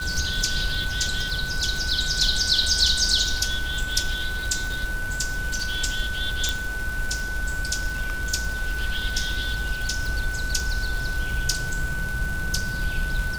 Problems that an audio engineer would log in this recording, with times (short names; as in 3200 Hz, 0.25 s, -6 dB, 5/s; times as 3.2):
crackle 210/s -28 dBFS
tone 1500 Hz -29 dBFS
6.49 pop